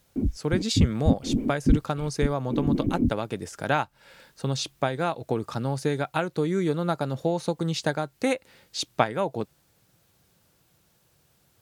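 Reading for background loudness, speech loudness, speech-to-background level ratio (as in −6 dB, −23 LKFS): −27.0 LKFS, −28.5 LKFS, −1.5 dB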